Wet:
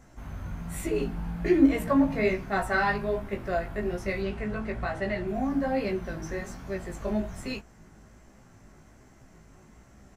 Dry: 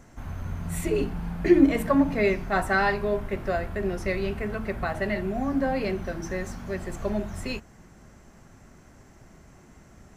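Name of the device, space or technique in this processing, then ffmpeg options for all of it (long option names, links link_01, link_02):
double-tracked vocal: -filter_complex "[0:a]asplit=2[link_01][link_02];[link_02]adelay=19,volume=-12dB[link_03];[link_01][link_03]amix=inputs=2:normalize=0,flanger=delay=15:depth=4.1:speed=1.2,asettb=1/sr,asplit=3[link_04][link_05][link_06];[link_04]atrim=end=4.224[link_07];[link_05]atrim=start=4.22:end=5.28,asetpts=PTS-STARTPTS,afade=type=in:duration=0.004:curve=qsin,afade=type=out:start_time=1.056:duration=0.004:curve=qsin,lowpass=9000[link_08];[link_06]atrim=start=5.276[link_09];[link_07][link_08]acrossfade=duration=0.004:curve1=hsin:curve2=qsin[link_10];[link_10][link_09]acrossfade=duration=0.004:curve1=qsin:curve2=hsin"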